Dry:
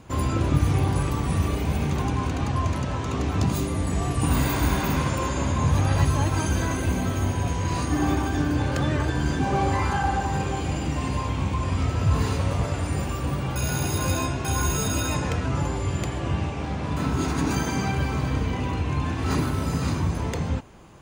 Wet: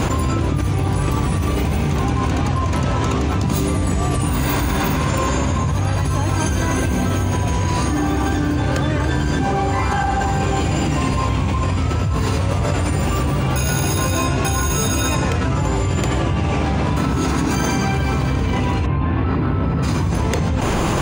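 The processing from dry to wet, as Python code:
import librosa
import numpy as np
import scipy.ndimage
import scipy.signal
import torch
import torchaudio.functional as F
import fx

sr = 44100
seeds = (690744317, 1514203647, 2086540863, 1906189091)

y = fx.highpass(x, sr, hz=70.0, slope=12, at=(10.7, 11.14))
y = fx.air_absorb(y, sr, metres=440.0, at=(18.85, 19.82), fade=0.02)
y = fx.env_flatten(y, sr, amount_pct=100)
y = F.gain(torch.from_numpy(y), -2.5).numpy()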